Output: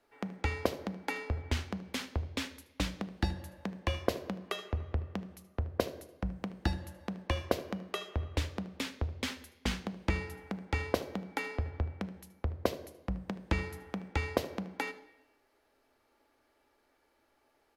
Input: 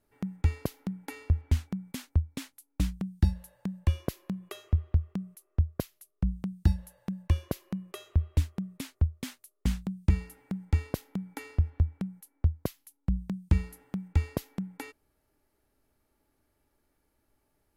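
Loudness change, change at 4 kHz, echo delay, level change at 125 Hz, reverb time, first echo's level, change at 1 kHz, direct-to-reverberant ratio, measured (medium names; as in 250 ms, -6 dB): -4.5 dB, +6.5 dB, 76 ms, -8.5 dB, 0.85 s, -18.0 dB, +8.0 dB, 9.5 dB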